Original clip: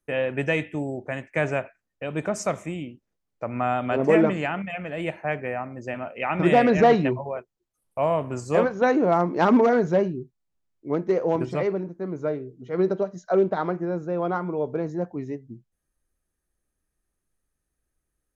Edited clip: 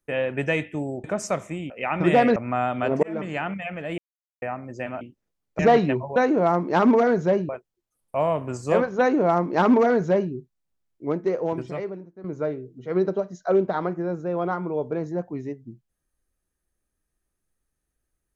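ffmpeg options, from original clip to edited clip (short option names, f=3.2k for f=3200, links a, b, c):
-filter_complex "[0:a]asplit=12[a][b][c][d][e][f][g][h][i][j][k][l];[a]atrim=end=1.042[m];[b]atrim=start=2.198:end=2.862[n];[c]atrim=start=6.088:end=6.752[o];[d]atrim=start=3.438:end=4.11,asetpts=PTS-STARTPTS,afade=t=out:st=0.668:d=0.004:c=hsin[p];[e]atrim=start=4.11:end=5.06,asetpts=PTS-STARTPTS,afade=t=in:d=0.41,afade=t=out:st=0.946:d=0.004:c=hsin[q];[f]atrim=start=5.06:end=5.5,asetpts=PTS-STARTPTS,volume=0[r];[g]atrim=start=5.5:end=6.092,asetpts=PTS-STARTPTS,afade=t=in:d=0.004:c=hsin[s];[h]atrim=start=2.858:end=3.442[t];[i]atrim=start=6.748:end=7.322[u];[j]atrim=start=8.818:end=10.152[v];[k]atrim=start=7.318:end=12.07,asetpts=PTS-STARTPTS,afade=t=out:st=3.562:d=1.19:silence=0.223872[w];[l]atrim=start=12.07,asetpts=PTS-STARTPTS,afade=t=in:d=0.004:c=hsin:silence=0.223872[x];[m][n]acrossfade=d=0.004:c1=hsin:c2=hsin[y];[y][o]acrossfade=d=0.004:c1=hsin:c2=hsin[z];[p][q][r][s]concat=n=4:v=0:a=1[aa];[z][aa]acrossfade=d=0.004:c1=hsin:c2=hsin[ab];[ab][t]acrossfade=d=0.004:c1=hsin:c2=hsin[ac];[ac][u]acrossfade=d=0.004:c1=hsin:c2=hsin[ad];[ad][v]acrossfade=d=0.004:c1=hsin:c2=hsin[ae];[w][x]concat=n=2:v=0:a=1[af];[ae][af]acrossfade=d=0.004:c1=hsin:c2=hsin"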